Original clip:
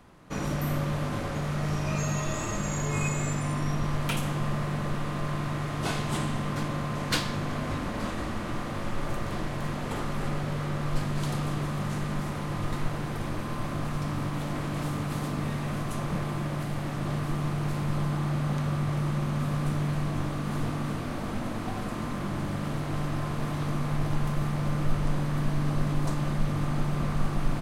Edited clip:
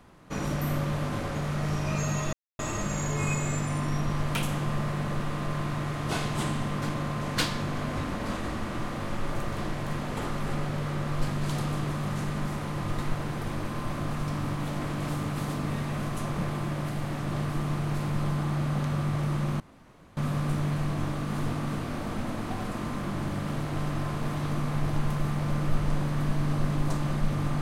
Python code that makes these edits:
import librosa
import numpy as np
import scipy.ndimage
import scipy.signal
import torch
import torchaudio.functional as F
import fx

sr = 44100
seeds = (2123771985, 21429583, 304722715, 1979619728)

y = fx.edit(x, sr, fx.insert_silence(at_s=2.33, length_s=0.26),
    fx.insert_room_tone(at_s=19.34, length_s=0.57), tone=tone)